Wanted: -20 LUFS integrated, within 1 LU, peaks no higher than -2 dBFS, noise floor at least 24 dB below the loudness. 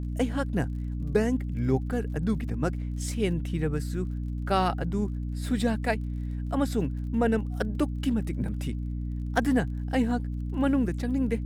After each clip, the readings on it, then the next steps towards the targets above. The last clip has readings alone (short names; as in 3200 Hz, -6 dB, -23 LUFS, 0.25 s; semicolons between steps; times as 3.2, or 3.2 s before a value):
ticks 35/s; hum 60 Hz; harmonics up to 300 Hz; hum level -29 dBFS; loudness -29.0 LUFS; peak -8.0 dBFS; loudness target -20.0 LUFS
-> de-click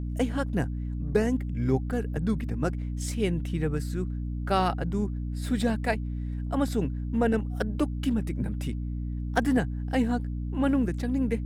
ticks 0.44/s; hum 60 Hz; harmonics up to 300 Hz; hum level -29 dBFS
-> de-hum 60 Hz, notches 5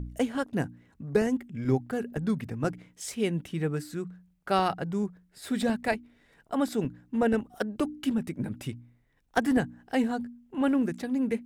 hum none; loudness -30.0 LUFS; peak -9.0 dBFS; loudness target -20.0 LUFS
-> gain +10 dB; limiter -2 dBFS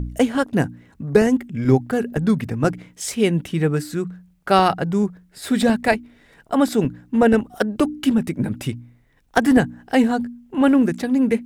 loudness -20.0 LUFS; peak -2.0 dBFS; noise floor -56 dBFS